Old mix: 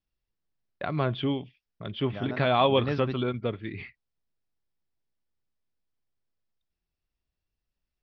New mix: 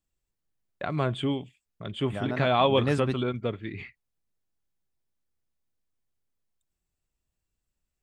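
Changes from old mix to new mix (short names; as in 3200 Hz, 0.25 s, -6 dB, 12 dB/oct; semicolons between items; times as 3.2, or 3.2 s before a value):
second voice +4.0 dB; master: remove steep low-pass 5700 Hz 96 dB/oct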